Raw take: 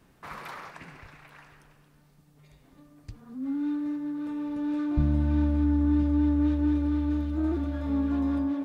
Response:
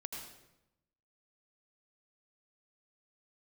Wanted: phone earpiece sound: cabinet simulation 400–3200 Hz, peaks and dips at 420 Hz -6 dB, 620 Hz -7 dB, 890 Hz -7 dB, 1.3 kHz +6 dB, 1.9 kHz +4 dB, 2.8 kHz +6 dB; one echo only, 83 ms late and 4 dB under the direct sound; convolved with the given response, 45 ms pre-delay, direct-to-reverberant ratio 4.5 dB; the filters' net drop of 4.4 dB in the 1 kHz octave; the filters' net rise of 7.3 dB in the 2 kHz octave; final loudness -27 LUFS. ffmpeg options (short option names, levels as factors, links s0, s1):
-filter_complex "[0:a]equalizer=f=1000:t=o:g=-8.5,equalizer=f=2000:t=o:g=8,aecho=1:1:83:0.631,asplit=2[s0][s1];[1:a]atrim=start_sample=2205,adelay=45[s2];[s1][s2]afir=irnorm=-1:irlink=0,volume=0.708[s3];[s0][s3]amix=inputs=2:normalize=0,highpass=400,equalizer=f=420:t=q:w=4:g=-6,equalizer=f=620:t=q:w=4:g=-7,equalizer=f=890:t=q:w=4:g=-7,equalizer=f=1300:t=q:w=4:g=6,equalizer=f=1900:t=q:w=4:g=4,equalizer=f=2800:t=q:w=4:g=6,lowpass=f=3200:w=0.5412,lowpass=f=3200:w=1.3066,volume=2.11"